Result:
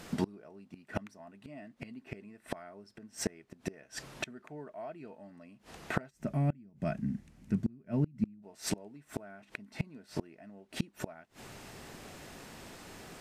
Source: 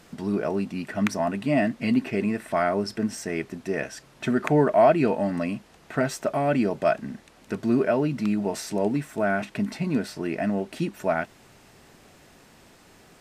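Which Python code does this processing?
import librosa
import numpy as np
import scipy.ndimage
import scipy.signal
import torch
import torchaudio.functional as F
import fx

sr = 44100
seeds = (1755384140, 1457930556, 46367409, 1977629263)

y = fx.curve_eq(x, sr, hz=(190.0, 440.0, 1200.0, 2100.0, 3800.0, 6000.0), db=(0, -19, -21, -16, -21, -16), at=(6.09, 8.42), fade=0.02)
y = fx.gate_flip(y, sr, shuts_db=-23.0, range_db=-30)
y = y * librosa.db_to_amplitude(4.0)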